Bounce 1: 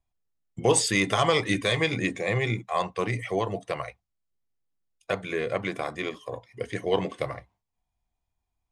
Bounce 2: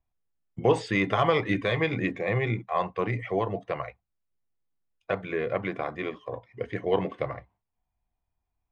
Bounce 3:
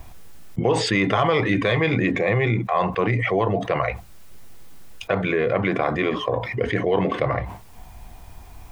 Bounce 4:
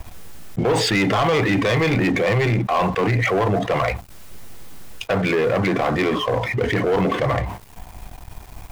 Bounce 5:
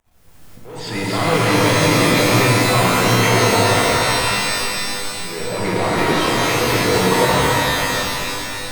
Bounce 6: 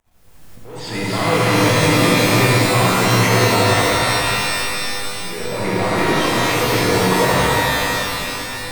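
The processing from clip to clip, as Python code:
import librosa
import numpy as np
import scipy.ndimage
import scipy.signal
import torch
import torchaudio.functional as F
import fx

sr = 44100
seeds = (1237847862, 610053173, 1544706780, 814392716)

y1 = scipy.signal.sosfilt(scipy.signal.butter(2, 2300.0, 'lowpass', fs=sr, output='sos'), x)
y2 = fx.env_flatten(y1, sr, amount_pct=70)
y3 = fx.leveller(y2, sr, passes=3)
y3 = F.gain(torch.from_numpy(y3), -6.0).numpy()
y4 = y3 + 10.0 ** (-7.0 / 20.0) * np.pad(y3, (int(275 * sr / 1000.0), 0))[:len(y3)]
y4 = fx.auto_swell(y4, sr, attack_ms=724.0)
y4 = fx.rev_shimmer(y4, sr, seeds[0], rt60_s=2.9, semitones=12, shimmer_db=-2, drr_db=-2.5)
y4 = F.gain(torch.from_numpy(y4), -3.0).numpy()
y5 = y4 + 10.0 ** (-5.5 / 20.0) * np.pad(y4, (int(76 * sr / 1000.0), 0))[:len(y4)]
y5 = F.gain(torch.from_numpy(y5), -1.0).numpy()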